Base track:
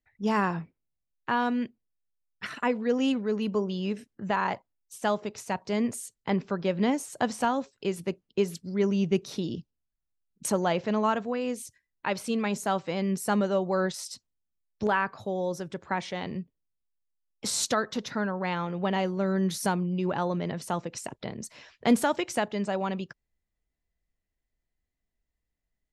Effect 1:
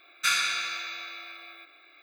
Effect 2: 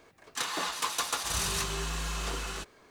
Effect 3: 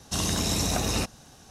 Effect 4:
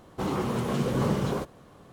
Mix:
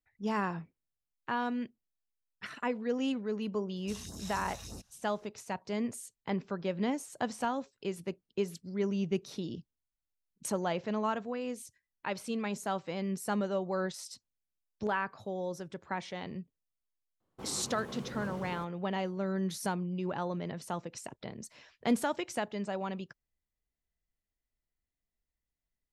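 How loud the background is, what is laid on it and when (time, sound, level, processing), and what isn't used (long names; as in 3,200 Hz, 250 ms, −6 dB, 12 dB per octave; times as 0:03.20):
base track −6.5 dB
0:03.76: mix in 3 −18 dB + all-pass phaser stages 2, 3.3 Hz, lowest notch 270–2,600 Hz
0:17.20: mix in 4 −15.5 dB + noise gate −46 dBFS, range −14 dB
not used: 1, 2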